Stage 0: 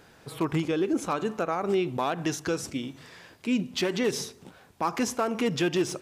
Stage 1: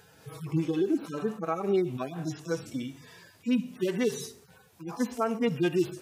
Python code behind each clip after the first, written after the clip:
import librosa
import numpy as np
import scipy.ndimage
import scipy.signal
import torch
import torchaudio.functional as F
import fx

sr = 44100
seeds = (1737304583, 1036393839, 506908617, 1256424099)

y = fx.hpss_only(x, sr, part='harmonic')
y = fx.high_shelf(y, sr, hz=7800.0, db=10.5)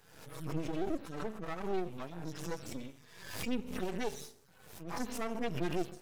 y = np.maximum(x, 0.0)
y = fx.pre_swell(y, sr, db_per_s=64.0)
y = y * librosa.db_to_amplitude(-5.0)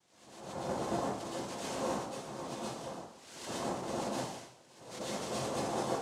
y = fx.noise_vocoder(x, sr, seeds[0], bands=2)
y = fx.rev_plate(y, sr, seeds[1], rt60_s=0.74, hf_ratio=0.9, predelay_ms=100, drr_db=-7.0)
y = y * librosa.db_to_amplitude(-7.0)